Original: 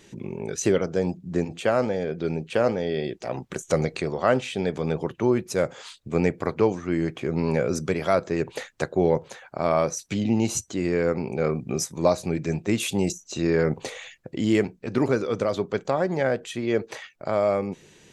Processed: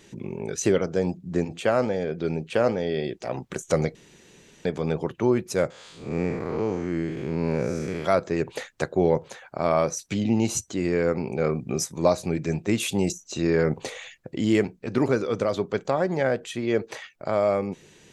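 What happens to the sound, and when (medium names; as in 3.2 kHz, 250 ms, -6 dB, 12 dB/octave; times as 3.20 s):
3.95–4.65 s: room tone
5.70–8.05 s: spectral blur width 206 ms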